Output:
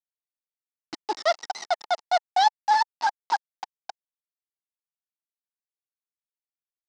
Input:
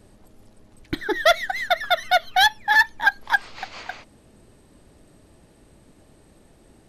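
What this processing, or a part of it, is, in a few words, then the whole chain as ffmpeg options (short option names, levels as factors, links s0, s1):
hand-held game console: -af "acrusher=bits=3:mix=0:aa=0.000001,highpass=460,equalizer=f=530:t=q:w=4:g=-6,equalizer=f=870:t=q:w=4:g=8,equalizer=f=1600:t=q:w=4:g=-10,equalizer=f=2400:t=q:w=4:g=-8,equalizer=f=3400:t=q:w=4:g=-9,equalizer=f=5000:t=q:w=4:g=4,lowpass=f=5400:w=0.5412,lowpass=f=5400:w=1.3066,bandreject=f=1800:w=11,volume=0.668"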